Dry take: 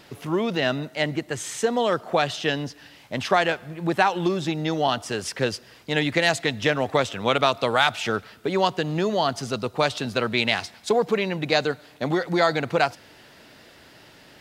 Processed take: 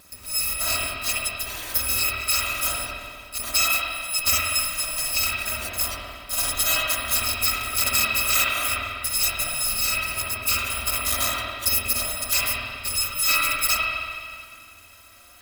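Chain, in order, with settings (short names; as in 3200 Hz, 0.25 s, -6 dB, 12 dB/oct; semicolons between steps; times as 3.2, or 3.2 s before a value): FFT order left unsorted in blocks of 256 samples; spring tank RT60 2 s, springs 45/57 ms, chirp 40 ms, DRR -5.5 dB; wide varispeed 0.935×; gain -2 dB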